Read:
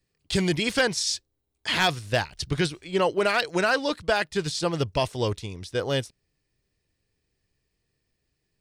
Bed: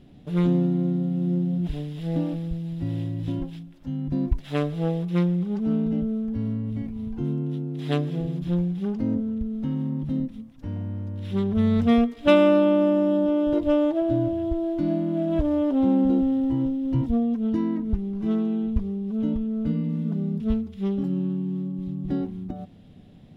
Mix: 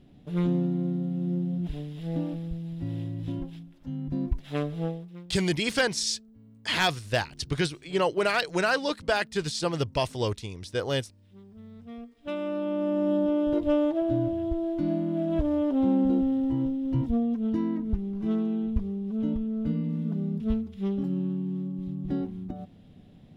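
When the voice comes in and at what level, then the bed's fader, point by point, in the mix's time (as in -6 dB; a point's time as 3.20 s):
5.00 s, -2.0 dB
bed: 4.85 s -4.5 dB
5.27 s -26 dB
11.80 s -26 dB
13.11 s -3 dB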